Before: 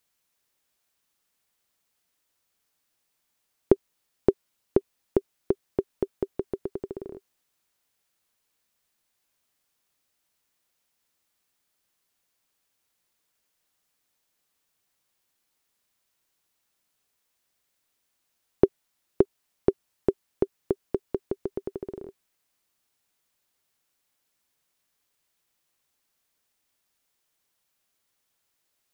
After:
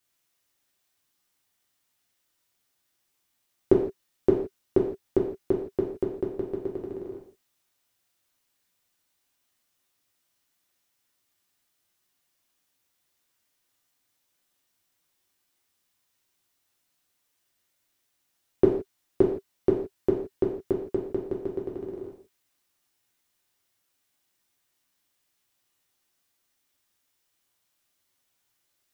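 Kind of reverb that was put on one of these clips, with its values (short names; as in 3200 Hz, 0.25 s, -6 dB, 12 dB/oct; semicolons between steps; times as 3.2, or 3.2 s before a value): non-linear reverb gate 0.19 s falling, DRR -3 dB; gain -4 dB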